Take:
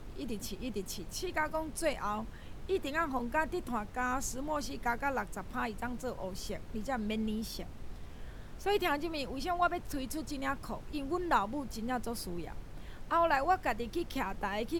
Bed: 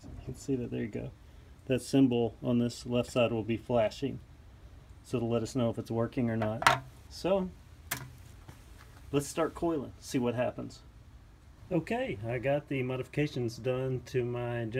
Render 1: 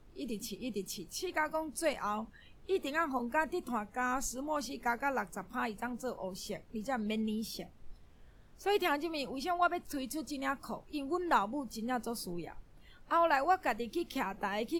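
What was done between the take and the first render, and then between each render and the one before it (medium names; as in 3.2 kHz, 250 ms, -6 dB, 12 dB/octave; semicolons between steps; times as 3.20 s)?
noise print and reduce 13 dB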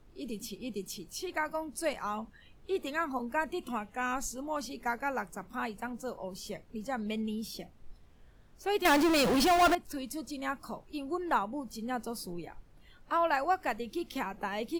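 3.52–4.16 s: peaking EQ 2.9 kHz +12 dB 0.39 oct; 8.85–9.75 s: power-law waveshaper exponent 0.35; 11.02–11.61 s: dynamic bell 5.3 kHz, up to -7 dB, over -53 dBFS, Q 1.1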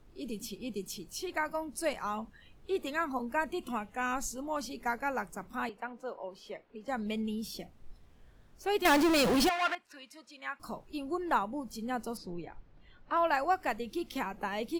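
5.69–6.88 s: three-band isolator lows -17 dB, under 300 Hz, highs -19 dB, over 3.7 kHz; 9.49–10.60 s: band-pass filter 2 kHz, Q 1.1; 12.17–13.17 s: distance through air 140 m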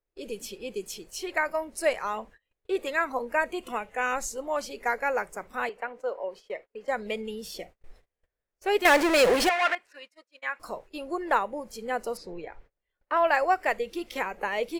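gate -50 dBFS, range -30 dB; graphic EQ 125/250/500/2000/8000 Hz -6/-6/+11/+9/+4 dB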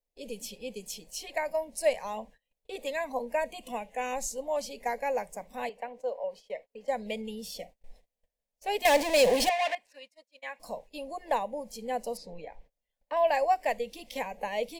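static phaser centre 360 Hz, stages 6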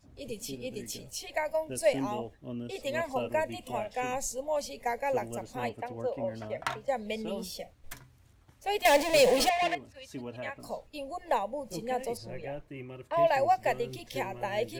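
add bed -10 dB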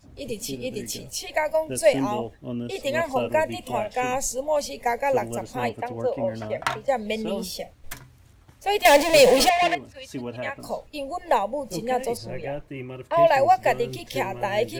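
trim +7.5 dB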